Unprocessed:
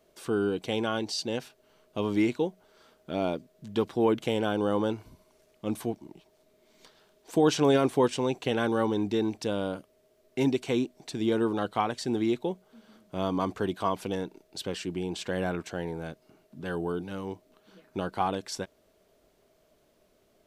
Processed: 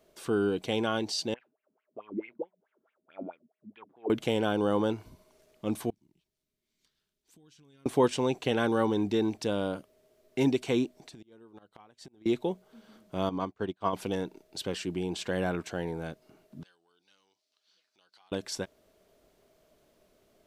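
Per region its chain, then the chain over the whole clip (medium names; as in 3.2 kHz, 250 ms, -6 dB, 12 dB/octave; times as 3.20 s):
1.34–4.10 s: distance through air 420 m + wah-wah 4.6 Hz 210–2600 Hz, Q 6.7
5.90–7.86 s: amplifier tone stack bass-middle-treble 6-0-2 + compression, threshold -57 dBFS
10.95–12.26 s: inverted gate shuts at -20 dBFS, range -28 dB + compression 16:1, threshold -45 dBFS
13.29–13.93 s: distance through air 67 m + upward expansion 2.5:1, over -43 dBFS
16.63–18.32 s: compression 3:1, threshold -43 dBFS + band-pass filter 4.8 kHz, Q 2.2
whole clip: none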